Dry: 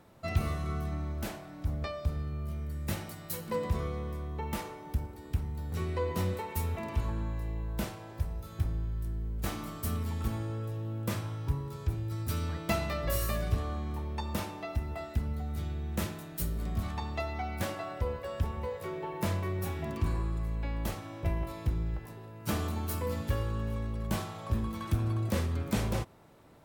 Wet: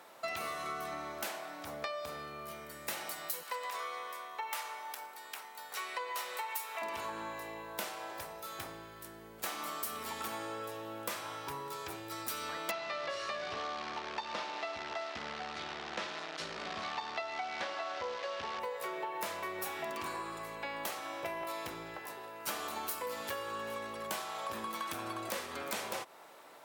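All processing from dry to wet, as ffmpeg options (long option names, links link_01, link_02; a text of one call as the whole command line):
ffmpeg -i in.wav -filter_complex "[0:a]asettb=1/sr,asplit=3[link_01][link_02][link_03];[link_01]atrim=end=3.434[link_04];[link_02]atrim=start=3.43:end=6.82,asetpts=PTS-STARTPTS,afade=type=in:duration=0.004:curve=qsin,afade=type=out:start_time=3.386:duration=0.004:curve=qsin,highpass=790,aeval=exprs='val(0)+0.00126*(sin(2*PI*50*n/s)+sin(2*PI*2*50*n/s)/2+sin(2*PI*3*50*n/s)/3+sin(2*PI*4*50*n/s)/4+sin(2*PI*5*50*n/s)/5)':channel_layout=same[link_05];[link_03]atrim=start=6.816[link_06];[link_04][link_05]acrossfade=duration=0.004:curve1=hsin:curve2=qsin[link_07];[link_07][link_06]acrossfade=duration=0.004:curve1=qsin:curve2=hsin,asettb=1/sr,asplit=3[link_08][link_09][link_10];[link_08]atrim=end=12.714[link_11];[link_09]atrim=start=12.71:end=18.6,asetpts=PTS-STARTPTS,afade=type=in:duration=0.004:curve=qsin,afade=type=out:start_time=5.886:duration=0.004:curve=qsin,acrusher=bits=8:dc=4:mix=0:aa=0.000001,lowpass=frequency=5100:width=0.5412,lowpass=frequency=5100:width=1.3066[link_12];[link_10]atrim=start=18.596[link_13];[link_11][link_12]acrossfade=duration=0.004:curve1=hsin:curve2=qsin[link_14];[link_14][link_13]acrossfade=duration=0.004:curve1=qsin:curve2=hsin,highpass=650,acompressor=threshold=-44dB:ratio=6,volume=8.5dB" out.wav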